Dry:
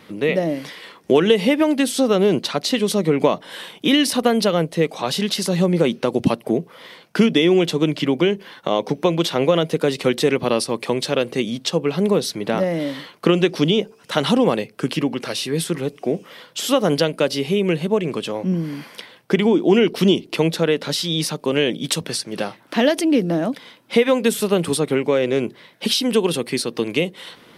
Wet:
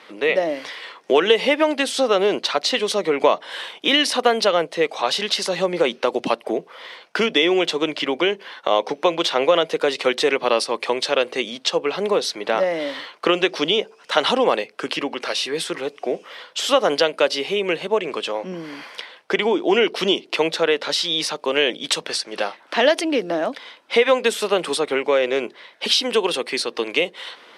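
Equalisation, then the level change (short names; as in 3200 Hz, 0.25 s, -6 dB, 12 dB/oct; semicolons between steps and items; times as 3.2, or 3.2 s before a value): HPF 550 Hz 12 dB/oct; air absorption 68 m; +4.5 dB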